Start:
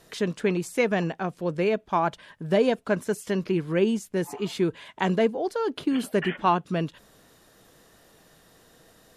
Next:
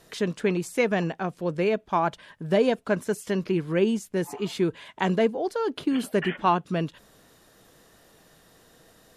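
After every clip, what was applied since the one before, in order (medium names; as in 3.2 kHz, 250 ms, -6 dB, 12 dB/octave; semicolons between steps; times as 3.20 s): no audible change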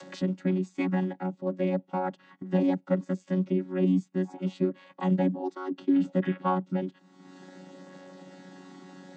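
vocoder on a held chord bare fifth, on F#3; upward compressor, threshold -32 dBFS; trim -1.5 dB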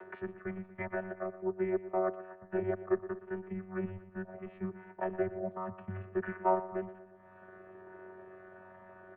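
feedback delay 119 ms, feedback 54%, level -16 dB; mistuned SSB -180 Hz 490–2200 Hz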